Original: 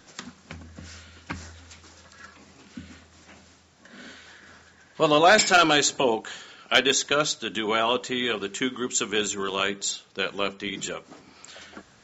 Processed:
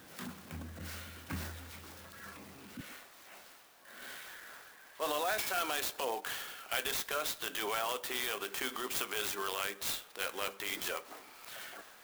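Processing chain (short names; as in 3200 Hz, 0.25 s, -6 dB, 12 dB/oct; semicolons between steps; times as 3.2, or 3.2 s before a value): HPF 68 Hz 12 dB/oct, from 2.81 s 570 Hz; transient shaper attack -10 dB, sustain +3 dB; compressor 6:1, threshold -32 dBFS, peak gain reduction 16.5 dB; clock jitter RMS 0.04 ms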